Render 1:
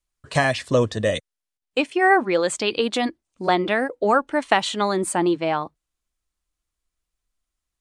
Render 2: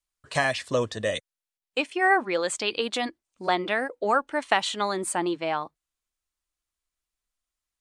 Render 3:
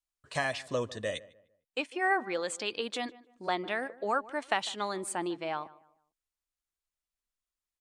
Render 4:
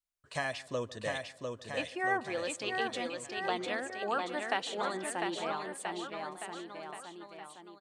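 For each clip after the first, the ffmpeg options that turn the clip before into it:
-af "lowshelf=f=440:g=-8,volume=-2.5dB"
-filter_complex "[0:a]asplit=2[a][b];[b]adelay=151,lowpass=f=1.7k:p=1,volume=-19dB,asplit=2[c][d];[d]adelay=151,lowpass=f=1.7k:p=1,volume=0.34,asplit=2[e][f];[f]adelay=151,lowpass=f=1.7k:p=1,volume=0.34[g];[a][c][e][g]amix=inputs=4:normalize=0,volume=-7dB"
-af "aecho=1:1:700|1330|1897|2407|2867:0.631|0.398|0.251|0.158|0.1,volume=-3.5dB"

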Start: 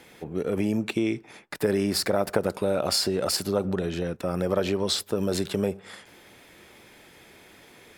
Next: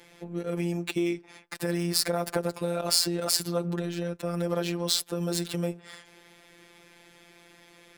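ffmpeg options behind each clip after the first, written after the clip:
-af "adynamicsmooth=sensitivity=6.5:basefreq=6k,aemphasis=mode=production:type=50fm,afftfilt=real='hypot(re,im)*cos(PI*b)':imag='0':win_size=1024:overlap=0.75"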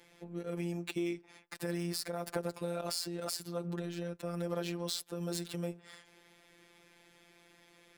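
-af "alimiter=limit=-8.5dB:level=0:latency=1:release=347,volume=-7.5dB"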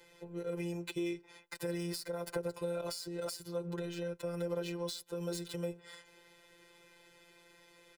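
-filter_complex "[0:a]aecho=1:1:2:0.91,acrossover=split=430[a][b];[b]acompressor=threshold=-37dB:ratio=5[c];[a][c]amix=inputs=2:normalize=0,volume=-1.5dB"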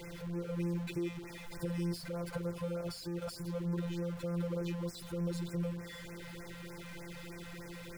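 -af "aeval=exprs='val(0)+0.5*0.0126*sgn(val(0))':c=same,bass=f=250:g=10,treble=f=4k:g=-5,afftfilt=real='re*(1-between(b*sr/1024,280*pow(3700/280,0.5+0.5*sin(2*PI*3.3*pts/sr))/1.41,280*pow(3700/280,0.5+0.5*sin(2*PI*3.3*pts/sr))*1.41))':imag='im*(1-between(b*sr/1024,280*pow(3700/280,0.5+0.5*sin(2*PI*3.3*pts/sr))/1.41,280*pow(3700/280,0.5+0.5*sin(2*PI*3.3*pts/sr))*1.41))':win_size=1024:overlap=0.75,volume=-5dB"

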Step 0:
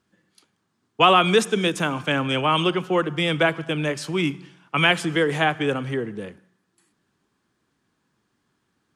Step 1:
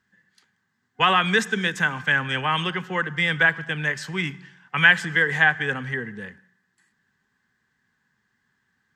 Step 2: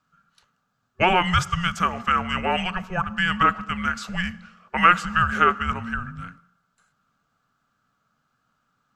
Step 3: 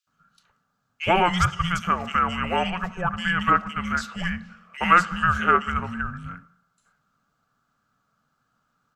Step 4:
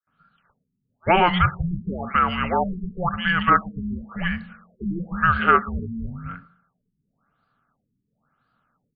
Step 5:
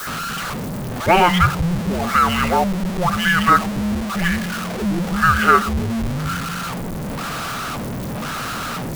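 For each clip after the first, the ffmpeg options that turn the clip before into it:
-af "superequalizer=6b=0.316:7b=0.562:8b=0.447:11b=3.55:16b=0.398,volume=-2.5dB"
-af "afreqshift=-360"
-filter_complex "[0:a]acrossover=split=2600[a][b];[a]adelay=70[c];[c][b]amix=inputs=2:normalize=0"
-af "afftfilt=real='re*lt(b*sr/1024,390*pow(5000/390,0.5+0.5*sin(2*PI*0.97*pts/sr)))':imag='im*lt(b*sr/1024,390*pow(5000/390,0.5+0.5*sin(2*PI*0.97*pts/sr)))':win_size=1024:overlap=0.75,volume=2.5dB"
-af "aeval=exprs='val(0)+0.5*0.0794*sgn(val(0))':c=same,volume=2dB"

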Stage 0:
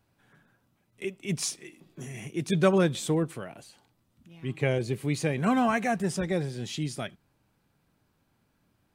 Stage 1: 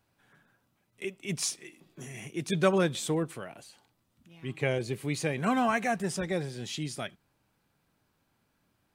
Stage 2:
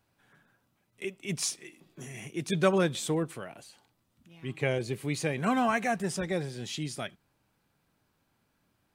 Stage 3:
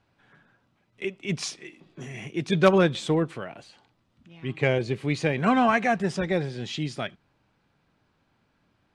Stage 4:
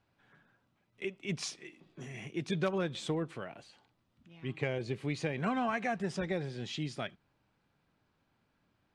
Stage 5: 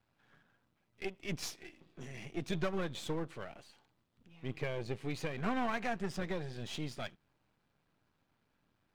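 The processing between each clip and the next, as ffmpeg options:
-af "lowshelf=f=420:g=-5"
-af anull
-af "lowpass=4.4k,aeval=exprs='0.251*(cos(1*acos(clip(val(0)/0.251,-1,1)))-cos(1*PI/2))+0.0355*(cos(3*acos(clip(val(0)/0.251,-1,1)))-cos(3*PI/2))+0.0251*(cos(5*acos(clip(val(0)/0.251,-1,1)))-cos(5*PI/2))+0.0112*(cos(7*acos(clip(val(0)/0.251,-1,1)))-cos(7*PI/2))':c=same,volume=7.5dB"
-af "acompressor=threshold=-23dB:ratio=4,volume=-6.5dB"
-af "aeval=exprs='if(lt(val(0),0),0.251*val(0),val(0))':c=same,volume=1dB"

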